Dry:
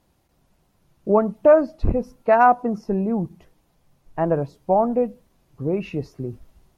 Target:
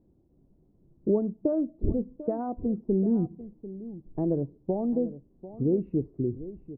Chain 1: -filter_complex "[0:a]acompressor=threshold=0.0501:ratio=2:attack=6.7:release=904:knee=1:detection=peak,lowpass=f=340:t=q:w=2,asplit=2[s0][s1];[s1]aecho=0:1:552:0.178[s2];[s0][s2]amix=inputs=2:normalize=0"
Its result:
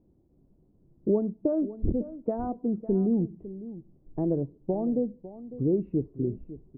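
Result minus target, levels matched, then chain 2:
echo 192 ms early
-filter_complex "[0:a]acompressor=threshold=0.0501:ratio=2:attack=6.7:release=904:knee=1:detection=peak,lowpass=f=340:t=q:w=2,asplit=2[s0][s1];[s1]aecho=0:1:744:0.178[s2];[s0][s2]amix=inputs=2:normalize=0"

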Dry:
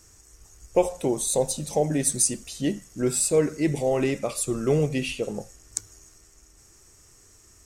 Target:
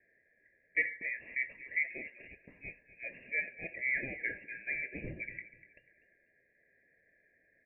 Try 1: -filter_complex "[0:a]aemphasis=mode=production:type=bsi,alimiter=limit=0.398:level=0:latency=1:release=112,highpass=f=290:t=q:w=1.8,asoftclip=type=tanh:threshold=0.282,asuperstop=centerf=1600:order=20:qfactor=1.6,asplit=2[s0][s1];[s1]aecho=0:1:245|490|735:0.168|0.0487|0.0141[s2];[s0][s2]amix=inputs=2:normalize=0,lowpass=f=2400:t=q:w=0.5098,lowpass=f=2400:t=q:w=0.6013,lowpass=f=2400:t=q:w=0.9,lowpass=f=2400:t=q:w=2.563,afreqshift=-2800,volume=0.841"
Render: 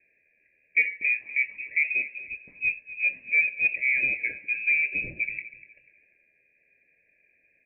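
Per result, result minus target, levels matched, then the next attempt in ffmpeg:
1 kHz band -13.5 dB; saturation: distortion -10 dB
-filter_complex "[0:a]aemphasis=mode=production:type=bsi,alimiter=limit=0.398:level=0:latency=1:release=112,highpass=f=990:t=q:w=1.8,asoftclip=type=tanh:threshold=0.282,asuperstop=centerf=1600:order=20:qfactor=1.6,asplit=2[s0][s1];[s1]aecho=0:1:245|490|735:0.168|0.0487|0.0141[s2];[s0][s2]amix=inputs=2:normalize=0,lowpass=f=2400:t=q:w=0.5098,lowpass=f=2400:t=q:w=0.6013,lowpass=f=2400:t=q:w=0.9,lowpass=f=2400:t=q:w=2.563,afreqshift=-2800,volume=0.841"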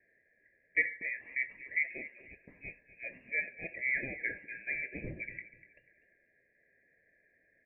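saturation: distortion -9 dB
-filter_complex "[0:a]aemphasis=mode=production:type=bsi,alimiter=limit=0.398:level=0:latency=1:release=112,highpass=f=990:t=q:w=1.8,asoftclip=type=tanh:threshold=0.119,asuperstop=centerf=1600:order=20:qfactor=1.6,asplit=2[s0][s1];[s1]aecho=0:1:245|490|735:0.168|0.0487|0.0141[s2];[s0][s2]amix=inputs=2:normalize=0,lowpass=f=2400:t=q:w=0.5098,lowpass=f=2400:t=q:w=0.6013,lowpass=f=2400:t=q:w=0.9,lowpass=f=2400:t=q:w=2.563,afreqshift=-2800,volume=0.841"

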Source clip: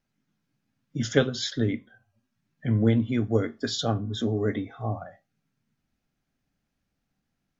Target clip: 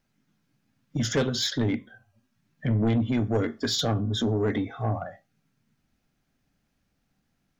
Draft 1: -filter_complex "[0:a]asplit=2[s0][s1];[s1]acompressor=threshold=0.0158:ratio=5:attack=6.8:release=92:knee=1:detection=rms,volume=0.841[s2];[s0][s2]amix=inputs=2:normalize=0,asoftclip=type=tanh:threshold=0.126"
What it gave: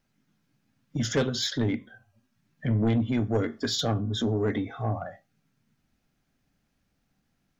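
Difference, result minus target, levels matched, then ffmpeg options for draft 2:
compression: peak gain reduction +7 dB
-filter_complex "[0:a]asplit=2[s0][s1];[s1]acompressor=threshold=0.0422:ratio=5:attack=6.8:release=92:knee=1:detection=rms,volume=0.841[s2];[s0][s2]amix=inputs=2:normalize=0,asoftclip=type=tanh:threshold=0.126"

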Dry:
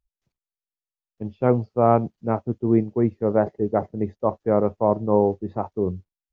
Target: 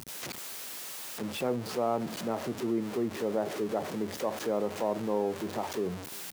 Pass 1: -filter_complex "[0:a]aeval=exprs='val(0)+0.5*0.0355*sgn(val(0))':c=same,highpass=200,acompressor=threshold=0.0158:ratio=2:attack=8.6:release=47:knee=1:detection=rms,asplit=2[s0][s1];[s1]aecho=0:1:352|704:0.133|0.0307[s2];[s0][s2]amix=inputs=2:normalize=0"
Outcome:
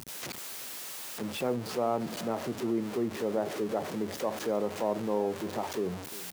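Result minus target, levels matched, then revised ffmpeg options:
echo-to-direct +7.5 dB
-filter_complex "[0:a]aeval=exprs='val(0)+0.5*0.0355*sgn(val(0))':c=same,highpass=200,acompressor=threshold=0.0158:ratio=2:attack=8.6:release=47:knee=1:detection=rms,asplit=2[s0][s1];[s1]aecho=0:1:352|704:0.0562|0.0129[s2];[s0][s2]amix=inputs=2:normalize=0"

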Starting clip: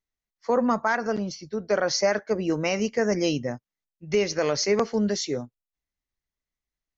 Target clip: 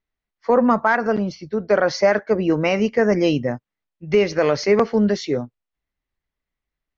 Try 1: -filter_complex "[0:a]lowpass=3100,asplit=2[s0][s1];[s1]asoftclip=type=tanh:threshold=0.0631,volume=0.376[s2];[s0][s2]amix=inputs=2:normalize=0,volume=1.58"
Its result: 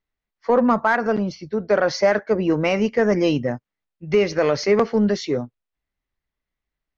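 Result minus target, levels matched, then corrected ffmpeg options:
saturation: distortion +15 dB
-filter_complex "[0:a]lowpass=3100,asplit=2[s0][s1];[s1]asoftclip=type=tanh:threshold=0.251,volume=0.376[s2];[s0][s2]amix=inputs=2:normalize=0,volume=1.58"

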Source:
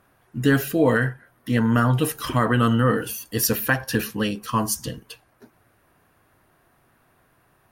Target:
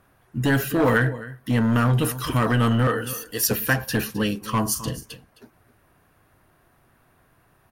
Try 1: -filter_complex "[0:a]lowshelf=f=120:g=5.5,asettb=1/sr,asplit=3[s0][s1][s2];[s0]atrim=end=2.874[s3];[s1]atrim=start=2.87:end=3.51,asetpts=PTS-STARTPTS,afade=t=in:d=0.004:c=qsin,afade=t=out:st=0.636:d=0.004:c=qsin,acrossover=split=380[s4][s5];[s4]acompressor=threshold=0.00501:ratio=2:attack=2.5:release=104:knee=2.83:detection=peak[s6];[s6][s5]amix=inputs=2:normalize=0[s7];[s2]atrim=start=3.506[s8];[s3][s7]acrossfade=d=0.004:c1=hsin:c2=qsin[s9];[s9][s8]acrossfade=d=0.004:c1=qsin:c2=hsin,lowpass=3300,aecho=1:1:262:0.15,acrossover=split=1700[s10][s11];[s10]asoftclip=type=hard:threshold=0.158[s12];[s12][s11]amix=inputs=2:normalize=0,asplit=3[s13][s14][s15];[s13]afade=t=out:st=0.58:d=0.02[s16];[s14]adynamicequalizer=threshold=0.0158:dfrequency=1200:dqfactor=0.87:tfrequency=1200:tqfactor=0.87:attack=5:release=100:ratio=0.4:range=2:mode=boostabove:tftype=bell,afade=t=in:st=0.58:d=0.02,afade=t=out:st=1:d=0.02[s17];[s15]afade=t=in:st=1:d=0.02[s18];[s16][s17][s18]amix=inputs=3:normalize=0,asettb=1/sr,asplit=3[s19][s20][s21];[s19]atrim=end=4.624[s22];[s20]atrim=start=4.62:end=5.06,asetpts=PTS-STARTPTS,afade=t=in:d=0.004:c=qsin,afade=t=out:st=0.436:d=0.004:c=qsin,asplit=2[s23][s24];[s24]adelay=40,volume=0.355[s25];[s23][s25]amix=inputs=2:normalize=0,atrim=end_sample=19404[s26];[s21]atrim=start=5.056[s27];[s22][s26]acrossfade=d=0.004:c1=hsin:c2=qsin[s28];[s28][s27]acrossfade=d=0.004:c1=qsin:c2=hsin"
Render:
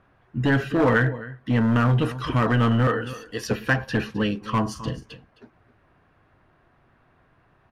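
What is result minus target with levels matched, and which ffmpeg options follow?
4 kHz band -3.0 dB
-filter_complex "[0:a]lowshelf=f=120:g=5.5,asettb=1/sr,asplit=3[s0][s1][s2];[s0]atrim=end=2.874[s3];[s1]atrim=start=2.87:end=3.51,asetpts=PTS-STARTPTS,afade=t=in:d=0.004:c=qsin,afade=t=out:st=0.636:d=0.004:c=qsin,acrossover=split=380[s4][s5];[s4]acompressor=threshold=0.00501:ratio=2:attack=2.5:release=104:knee=2.83:detection=peak[s6];[s6][s5]amix=inputs=2:normalize=0[s7];[s2]atrim=start=3.506[s8];[s3][s7]acrossfade=d=0.004:c1=hsin:c2=qsin[s9];[s9][s8]acrossfade=d=0.004:c1=qsin:c2=hsin,aecho=1:1:262:0.15,acrossover=split=1700[s10][s11];[s10]asoftclip=type=hard:threshold=0.158[s12];[s12][s11]amix=inputs=2:normalize=0,asplit=3[s13][s14][s15];[s13]afade=t=out:st=0.58:d=0.02[s16];[s14]adynamicequalizer=threshold=0.0158:dfrequency=1200:dqfactor=0.87:tfrequency=1200:tqfactor=0.87:attack=5:release=100:ratio=0.4:range=2:mode=boostabove:tftype=bell,afade=t=in:st=0.58:d=0.02,afade=t=out:st=1:d=0.02[s17];[s15]afade=t=in:st=1:d=0.02[s18];[s16][s17][s18]amix=inputs=3:normalize=0,asettb=1/sr,asplit=3[s19][s20][s21];[s19]atrim=end=4.624[s22];[s20]atrim=start=4.62:end=5.06,asetpts=PTS-STARTPTS,afade=t=in:d=0.004:c=qsin,afade=t=out:st=0.436:d=0.004:c=qsin,asplit=2[s23][s24];[s24]adelay=40,volume=0.355[s25];[s23][s25]amix=inputs=2:normalize=0,atrim=end_sample=19404[s26];[s21]atrim=start=5.056[s27];[s22][s26]acrossfade=d=0.004:c1=hsin:c2=qsin[s28];[s28][s27]acrossfade=d=0.004:c1=qsin:c2=hsin"

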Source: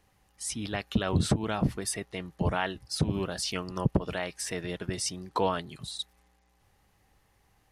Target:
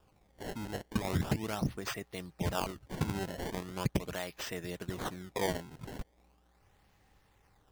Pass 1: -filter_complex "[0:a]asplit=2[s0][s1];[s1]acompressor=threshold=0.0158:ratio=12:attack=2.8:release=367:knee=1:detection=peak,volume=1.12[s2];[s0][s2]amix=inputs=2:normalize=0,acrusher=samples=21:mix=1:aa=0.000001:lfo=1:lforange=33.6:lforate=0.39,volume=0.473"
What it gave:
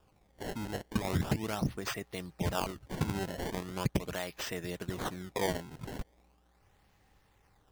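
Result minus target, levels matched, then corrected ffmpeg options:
compression: peak gain reduction -8 dB
-filter_complex "[0:a]asplit=2[s0][s1];[s1]acompressor=threshold=0.00596:ratio=12:attack=2.8:release=367:knee=1:detection=peak,volume=1.12[s2];[s0][s2]amix=inputs=2:normalize=0,acrusher=samples=21:mix=1:aa=0.000001:lfo=1:lforange=33.6:lforate=0.39,volume=0.473"

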